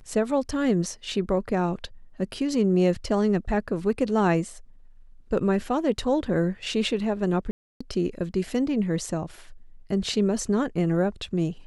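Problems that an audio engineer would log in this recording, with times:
7.51–7.8 gap 0.295 s

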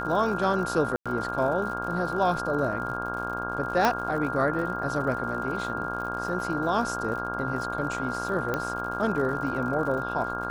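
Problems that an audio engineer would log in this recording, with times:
buzz 60 Hz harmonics 27 -34 dBFS
crackle 82/s -36 dBFS
tone 1400 Hz -32 dBFS
0.96–1.06 gap 96 ms
3.85 pop -9 dBFS
8.54 pop -14 dBFS

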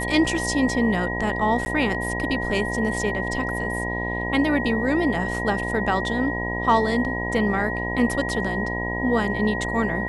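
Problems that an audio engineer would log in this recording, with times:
buzz 60 Hz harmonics 17 -29 dBFS
tone 1900 Hz -28 dBFS
1.65–1.66 gap 10 ms

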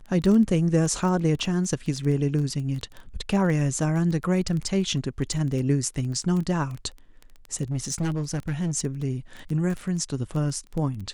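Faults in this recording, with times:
crackle 12/s -28 dBFS
7.63–8.77 clipped -22.5 dBFS

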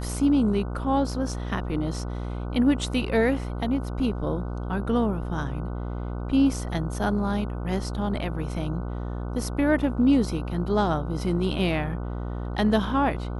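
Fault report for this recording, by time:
buzz 60 Hz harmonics 25 -31 dBFS

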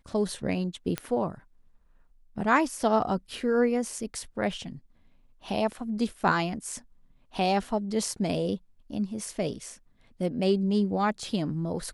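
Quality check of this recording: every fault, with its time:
0.98 pop -14 dBFS

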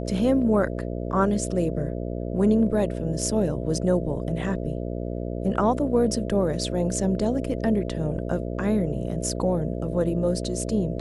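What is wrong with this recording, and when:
buzz 60 Hz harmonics 11 -30 dBFS

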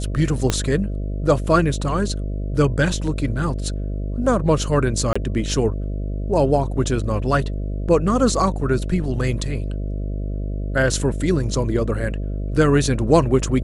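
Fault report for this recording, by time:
buzz 50 Hz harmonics 13 -25 dBFS
0.5 pop -5 dBFS
5.13–5.16 gap 25 ms

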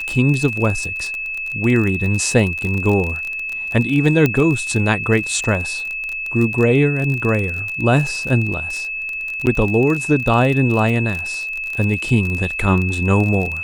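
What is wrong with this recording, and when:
crackle 29/s -21 dBFS
tone 2600 Hz -23 dBFS
4.26 pop -4 dBFS
9.46–9.47 gap 9.5 ms

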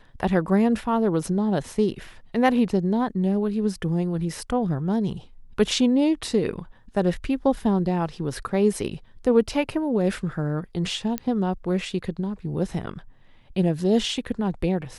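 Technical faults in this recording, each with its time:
11.18 pop -11 dBFS

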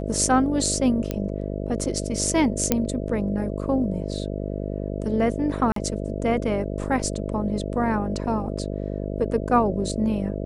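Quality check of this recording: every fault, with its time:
buzz 50 Hz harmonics 13 -29 dBFS
1.11 pop -13 dBFS
2.72 pop -4 dBFS
5.72–5.76 gap 43 ms

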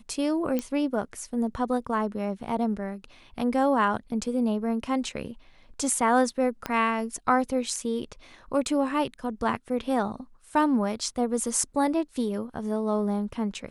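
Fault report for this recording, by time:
0.59 pop -15 dBFS
6.66 pop -14 dBFS

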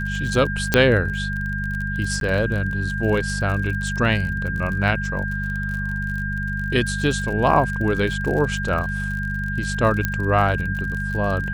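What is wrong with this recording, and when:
crackle 47/s -28 dBFS
hum 50 Hz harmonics 4 -27 dBFS
tone 1600 Hz -27 dBFS
0.74 pop -1 dBFS
2.2–2.21 gap 12 ms
10.05 pop -7 dBFS

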